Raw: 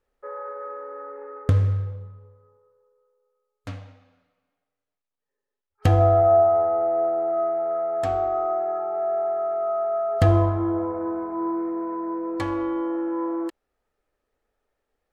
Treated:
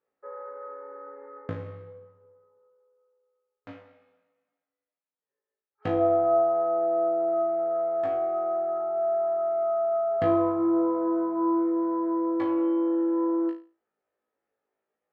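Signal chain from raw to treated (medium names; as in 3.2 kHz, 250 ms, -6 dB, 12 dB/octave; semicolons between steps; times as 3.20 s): band-pass 210–2300 Hz; on a send: flutter echo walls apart 3.1 m, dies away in 0.33 s; on the sum: trim -6.5 dB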